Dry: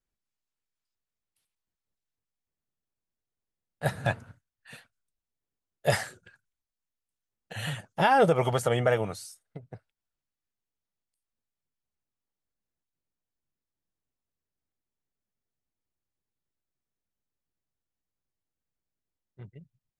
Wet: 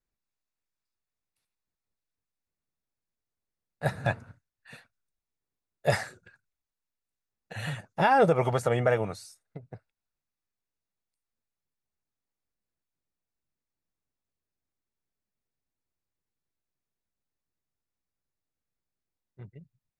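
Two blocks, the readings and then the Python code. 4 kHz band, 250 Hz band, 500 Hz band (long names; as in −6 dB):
−4.0 dB, 0.0 dB, 0.0 dB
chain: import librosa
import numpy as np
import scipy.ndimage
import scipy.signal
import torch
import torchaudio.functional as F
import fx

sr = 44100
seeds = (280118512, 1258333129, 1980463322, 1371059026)

y = fx.high_shelf(x, sr, hz=8200.0, db=-9.5)
y = fx.notch(y, sr, hz=3100.0, q=6.3)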